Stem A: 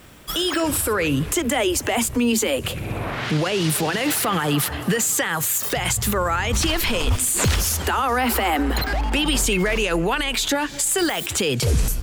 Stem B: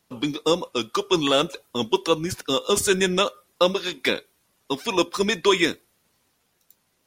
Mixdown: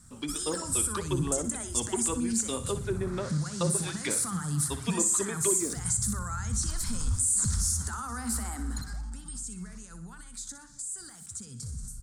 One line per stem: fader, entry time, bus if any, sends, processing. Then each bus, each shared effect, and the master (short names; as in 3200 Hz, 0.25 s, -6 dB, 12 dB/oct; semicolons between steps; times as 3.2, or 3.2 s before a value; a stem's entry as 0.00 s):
8.66 s -6.5 dB -> 9.23 s -17 dB, 0.00 s, no send, echo send -10.5 dB, EQ curve 220 Hz 0 dB, 330 Hz -18 dB, 560 Hz -22 dB, 1400 Hz -7 dB, 2800 Hz -28 dB, 4200 Hz -9 dB, 8800 Hz +5 dB, 14000 Hz -25 dB; limiter -15 dBFS, peak gain reduction 6 dB
-10.5 dB, 0.00 s, no send, echo send -13.5 dB, notch 500 Hz, Q 16; treble ducked by the level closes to 610 Hz, closed at -15.5 dBFS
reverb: off
echo: feedback echo 61 ms, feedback 40%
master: high shelf 5500 Hz +6 dB